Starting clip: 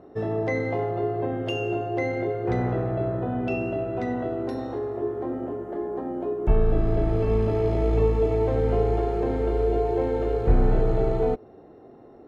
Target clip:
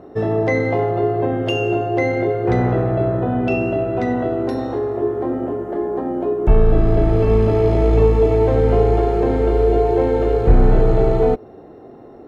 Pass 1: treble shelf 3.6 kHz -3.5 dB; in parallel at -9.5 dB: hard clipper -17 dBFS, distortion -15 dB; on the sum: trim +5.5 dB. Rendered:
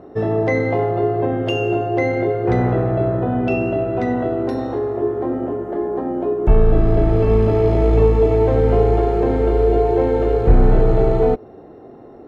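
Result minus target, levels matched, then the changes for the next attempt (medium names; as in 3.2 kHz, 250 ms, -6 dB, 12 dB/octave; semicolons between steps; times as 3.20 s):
8 kHz band -2.5 dB
remove: treble shelf 3.6 kHz -3.5 dB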